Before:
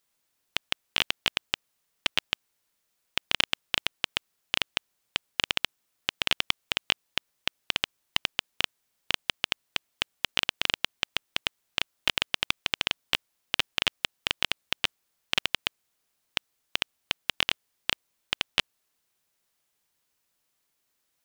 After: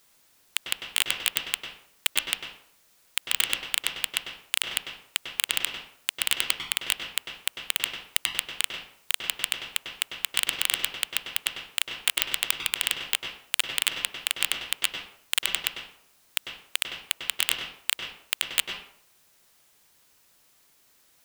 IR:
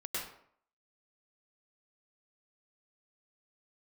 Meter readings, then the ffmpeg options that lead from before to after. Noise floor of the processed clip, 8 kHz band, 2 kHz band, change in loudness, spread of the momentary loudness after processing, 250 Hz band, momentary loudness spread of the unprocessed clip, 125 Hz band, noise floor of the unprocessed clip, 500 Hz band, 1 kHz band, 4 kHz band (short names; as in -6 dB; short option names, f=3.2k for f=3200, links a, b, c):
-62 dBFS, +11.5 dB, 0.0 dB, +2.0 dB, 8 LU, -6.0 dB, 8 LU, -7.0 dB, -77 dBFS, -4.5 dB, -2.5 dB, 0.0 dB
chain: -filter_complex "[0:a]acrusher=bits=5:mode=log:mix=0:aa=0.000001,asplit=2[a][b];[1:a]atrim=start_sample=2205[c];[b][c]afir=irnorm=-1:irlink=0,volume=-22.5dB[d];[a][d]amix=inputs=2:normalize=0,aeval=exprs='0.75*sin(PI/2*6.31*val(0)/0.75)':c=same,volume=-6dB"